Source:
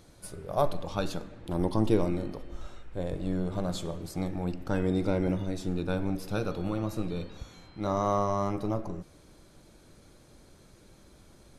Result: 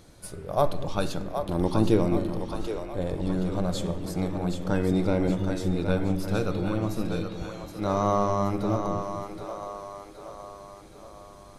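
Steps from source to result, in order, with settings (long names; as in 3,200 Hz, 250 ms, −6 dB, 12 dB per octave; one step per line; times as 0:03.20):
echo with a time of its own for lows and highs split 380 Hz, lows 220 ms, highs 771 ms, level −7 dB
level +3 dB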